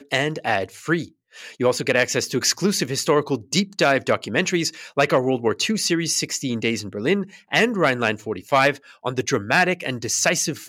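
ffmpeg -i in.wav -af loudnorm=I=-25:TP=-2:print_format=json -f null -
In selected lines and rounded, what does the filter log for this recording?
"input_i" : "-21.2",
"input_tp" : "-6.0",
"input_lra" : "1.0",
"input_thresh" : "-31.3",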